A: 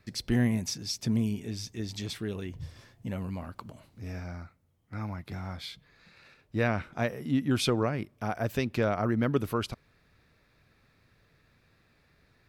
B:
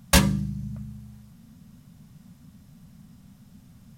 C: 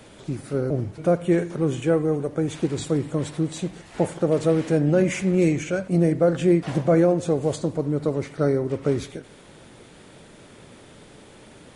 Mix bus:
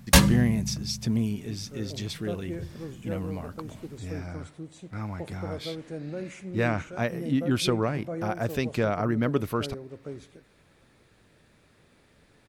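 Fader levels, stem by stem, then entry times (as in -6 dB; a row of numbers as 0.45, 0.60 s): +1.5, +1.0, -16.5 dB; 0.00, 0.00, 1.20 s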